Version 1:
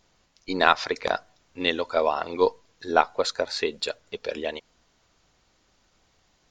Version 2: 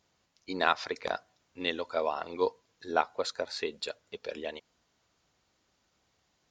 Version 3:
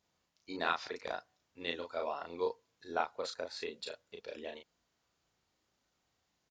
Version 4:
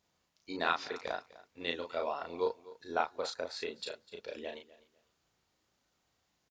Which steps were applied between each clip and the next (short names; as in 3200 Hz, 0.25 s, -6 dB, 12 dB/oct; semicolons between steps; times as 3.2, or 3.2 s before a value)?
HPF 65 Hz; gain -7.5 dB
doubler 35 ms -3.5 dB; gain -8 dB
feedback echo 0.251 s, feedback 23%, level -19 dB; gain +2 dB